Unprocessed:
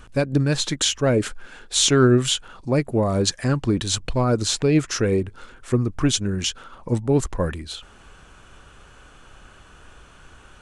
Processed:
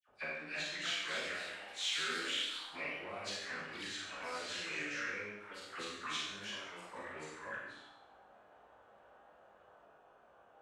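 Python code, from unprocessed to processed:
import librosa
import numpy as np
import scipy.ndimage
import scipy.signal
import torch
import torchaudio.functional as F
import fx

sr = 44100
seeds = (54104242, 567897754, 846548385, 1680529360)

p1 = fx.frame_reverse(x, sr, frame_ms=40.0)
p2 = np.clip(p1, -10.0 ** (-24.0 / 20.0), 10.0 ** (-24.0 / 20.0))
p3 = p1 + (p2 * librosa.db_to_amplitude(-5.5))
p4 = fx.auto_wah(p3, sr, base_hz=620.0, top_hz=2200.0, q=3.2, full_db=-18.0, direction='up')
p5 = fx.dispersion(p4, sr, late='lows', ms=82.0, hz=1500.0)
p6 = fx.cheby_harmonics(p5, sr, harmonics=(8,), levels_db=(-40,), full_scale_db=-19.5)
p7 = fx.echo_pitch(p6, sr, ms=350, semitones=2, count=2, db_per_echo=-6.0)
p8 = fx.rev_schroeder(p7, sr, rt60_s=0.85, comb_ms=30, drr_db=-2.5)
y = p8 * librosa.db_to_amplitude(-7.0)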